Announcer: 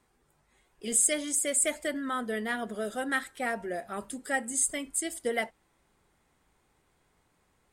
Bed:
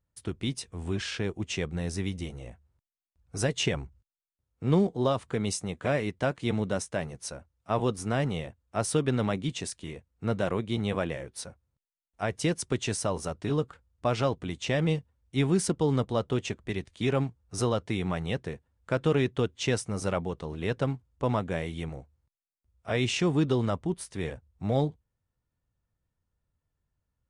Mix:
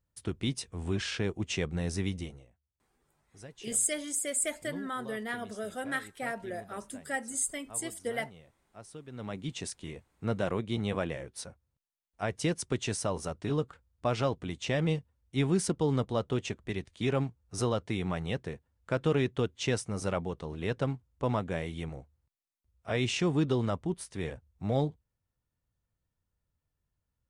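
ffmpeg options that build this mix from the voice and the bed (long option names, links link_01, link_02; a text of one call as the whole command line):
ffmpeg -i stem1.wav -i stem2.wav -filter_complex "[0:a]adelay=2800,volume=-4dB[link_01];[1:a]volume=17.5dB,afade=type=out:start_time=2.14:duration=0.33:silence=0.1,afade=type=in:start_time=9.1:duration=0.58:silence=0.125893[link_02];[link_01][link_02]amix=inputs=2:normalize=0" out.wav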